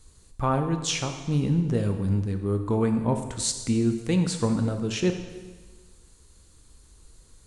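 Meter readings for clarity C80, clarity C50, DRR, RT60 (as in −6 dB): 9.5 dB, 8.0 dB, 5.5 dB, 1.4 s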